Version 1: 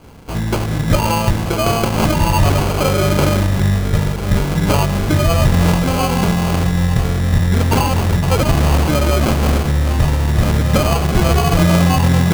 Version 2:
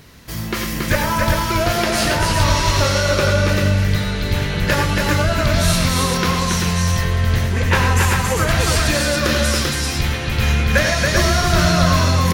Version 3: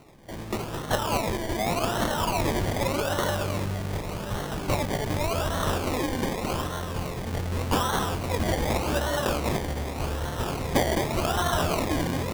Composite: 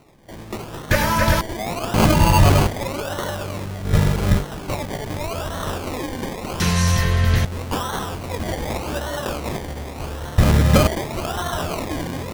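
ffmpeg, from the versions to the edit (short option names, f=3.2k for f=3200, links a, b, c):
-filter_complex "[1:a]asplit=2[a][b];[0:a]asplit=3[c][d][e];[2:a]asplit=6[f][g][h][i][j][k];[f]atrim=end=0.912[l];[a]atrim=start=0.908:end=1.412[m];[g]atrim=start=1.408:end=1.942[n];[c]atrim=start=1.938:end=2.672[o];[h]atrim=start=2.668:end=3.97[p];[d]atrim=start=3.81:end=4.46[q];[i]atrim=start=4.3:end=6.602[r];[b]atrim=start=6.598:end=7.452[s];[j]atrim=start=7.448:end=10.382[t];[e]atrim=start=10.378:end=10.872[u];[k]atrim=start=10.868[v];[l][m]acrossfade=d=0.004:c1=hsin:c2=hsin[w];[w][n]acrossfade=d=0.004:c1=hsin:c2=hsin[x];[x][o]acrossfade=d=0.004:c1=hsin:c2=hsin[y];[y][p]acrossfade=d=0.004:c1=hsin:c2=hsin[z];[z][q]acrossfade=d=0.16:c1=tri:c2=tri[aa];[aa][r]acrossfade=d=0.16:c1=tri:c2=tri[ab];[ab][s]acrossfade=d=0.004:c1=hsin:c2=hsin[ac];[ac][t]acrossfade=d=0.004:c1=hsin:c2=hsin[ad];[ad][u]acrossfade=d=0.004:c1=hsin:c2=hsin[ae];[ae][v]acrossfade=d=0.004:c1=hsin:c2=hsin"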